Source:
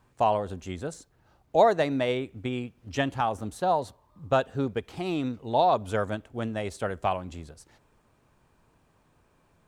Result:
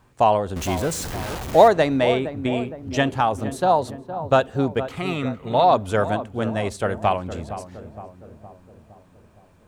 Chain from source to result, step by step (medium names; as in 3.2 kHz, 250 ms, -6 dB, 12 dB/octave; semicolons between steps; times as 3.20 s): 0.56–1.68 s: jump at every zero crossing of -31.5 dBFS; 4.91–5.64 s: graphic EQ with 31 bands 315 Hz -12 dB, 800 Hz -7 dB, 1.25 kHz +11 dB, 2 kHz +10 dB, 5 kHz -10 dB; filtered feedback delay 464 ms, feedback 59%, low-pass 1.1 kHz, level -11 dB; trim +6.5 dB